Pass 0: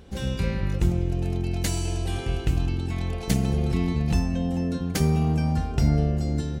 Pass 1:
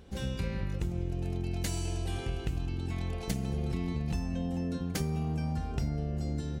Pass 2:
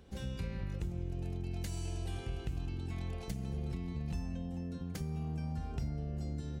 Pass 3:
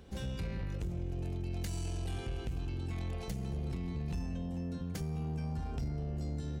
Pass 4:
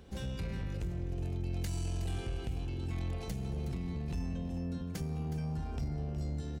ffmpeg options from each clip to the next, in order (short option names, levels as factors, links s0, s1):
-af "acompressor=threshold=0.0708:ratio=6,volume=0.562"
-filter_complex "[0:a]acrossover=split=180[s0][s1];[s1]acompressor=threshold=0.0112:ratio=6[s2];[s0][s2]amix=inputs=2:normalize=0,volume=0.596"
-af "asoftclip=type=tanh:threshold=0.0211,volume=1.5"
-af "aecho=1:1:367:0.266"